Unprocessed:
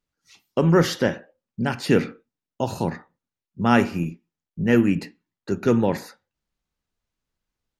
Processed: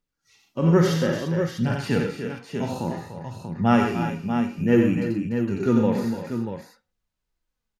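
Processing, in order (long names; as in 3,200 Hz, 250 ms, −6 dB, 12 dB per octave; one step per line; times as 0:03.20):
multi-tap delay 89/125/295/339/640 ms −9/−12/−10.5/−14.5/−7 dB
harmonic and percussive parts rebalanced percussive −16 dB
phase shifter 0.58 Hz, delay 5 ms, feedback 29%
level +1.5 dB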